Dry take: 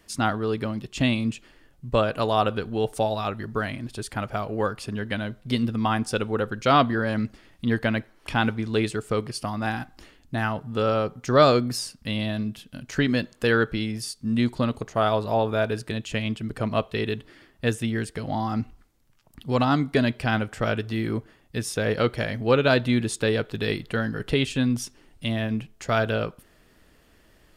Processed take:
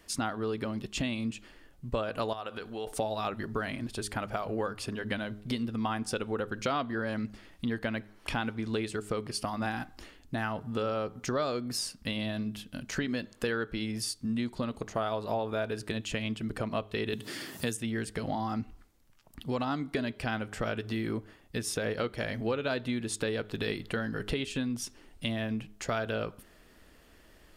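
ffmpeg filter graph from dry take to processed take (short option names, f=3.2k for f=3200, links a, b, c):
-filter_complex "[0:a]asettb=1/sr,asplit=3[a][b][c];[a]atrim=end=2.334[d];[b]atrim=start=2.33:end=2.87,asetpts=PTS-STARTPTS,afade=t=in:d=0.004:c=qsin,afade=t=out:st=0.536:d=0.004:c=qsin,lowshelf=f=350:g=-12,acompressor=threshold=-36dB:ratio=2.5:attack=3.2:release=140:knee=1:detection=peak[e];[c]atrim=start=2.866[f];[d][e]acrossfade=d=0.004:c1=hsin:c2=qsin[g];[g][f]acrossfade=d=0.004:c1=qsin:c2=hsin,asettb=1/sr,asplit=3[h][i][j];[h]atrim=end=17.134[k];[i]atrim=start=17.13:end=17.77,asetpts=PTS-STARTPTS,afade=t=in:d=0.004:c=qsin,afade=t=out:st=0.636:d=0.004:c=qsin,highpass=f=120:w=0.5412,highpass=f=120:w=1.3066,bass=f=250:g=6,treble=f=4k:g=14,acompressor=mode=upward:threshold=-28dB:ratio=2.5:attack=3.2:release=140:knee=2.83:detection=peak[l];[j]atrim=start=17.766[m];[k][l]acrossfade=d=0.004:c1=hsin:c2=qsin[n];[n][m]acrossfade=d=0.004:c1=qsin:c2=hsin,acompressor=threshold=-28dB:ratio=6,equalizer=f=130:t=o:w=0.6:g=-5,bandreject=f=103.7:t=h:w=4,bandreject=f=207.4:t=h:w=4,bandreject=f=311.1:t=h:w=4,bandreject=f=414.8:t=h:w=4"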